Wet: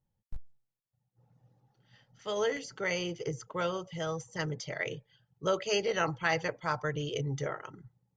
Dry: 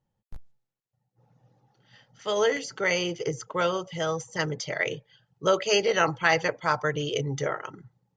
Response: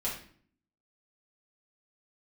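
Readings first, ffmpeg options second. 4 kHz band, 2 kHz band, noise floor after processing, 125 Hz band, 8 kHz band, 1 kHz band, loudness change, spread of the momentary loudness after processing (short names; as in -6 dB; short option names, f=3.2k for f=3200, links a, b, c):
-7.5 dB, -7.5 dB, -85 dBFS, -3.0 dB, -7.5 dB, -7.5 dB, -7.0 dB, 8 LU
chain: -af "lowshelf=f=140:g=9.5,volume=-7.5dB"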